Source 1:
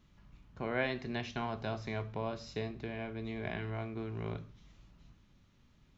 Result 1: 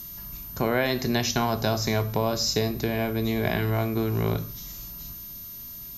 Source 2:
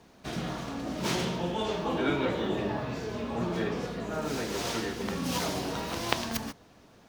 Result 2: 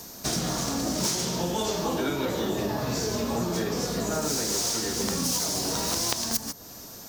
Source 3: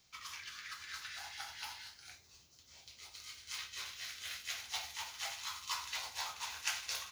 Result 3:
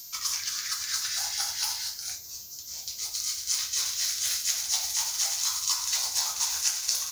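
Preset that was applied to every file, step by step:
resonant high shelf 4100 Hz +12 dB, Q 1.5; compressor 10:1, threshold -33 dBFS; whine 13000 Hz -57 dBFS; mismatched tape noise reduction encoder only; match loudness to -27 LUFS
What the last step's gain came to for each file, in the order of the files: +14.5, +9.0, +9.5 dB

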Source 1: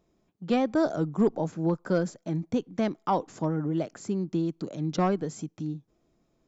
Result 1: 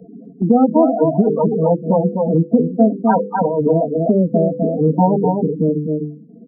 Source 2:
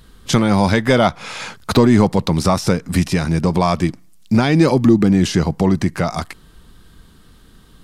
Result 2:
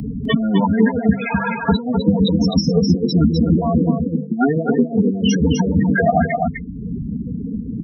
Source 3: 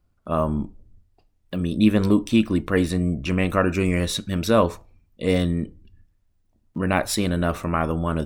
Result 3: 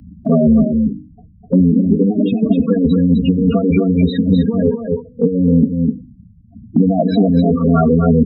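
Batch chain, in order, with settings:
minimum comb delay 4.3 ms; notch 4700 Hz, Q 12; spectral gate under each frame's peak -25 dB strong; notches 50/100/150/200/250/300/350/400/450/500 Hz; low-pass opened by the level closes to 500 Hz, open at -16 dBFS; HPF 87 Hz 12 dB/oct; dynamic EQ 1100 Hz, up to -5 dB, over -38 dBFS, Q 2.5; negative-ratio compressor -25 dBFS, ratio -0.5; loudest bins only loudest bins 8; wow and flutter 17 cents; on a send: echo 0.253 s -7 dB; on the sum: three-band squash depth 70%; normalise peaks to -1.5 dBFS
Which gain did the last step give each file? +18.0, +11.0, +14.0 dB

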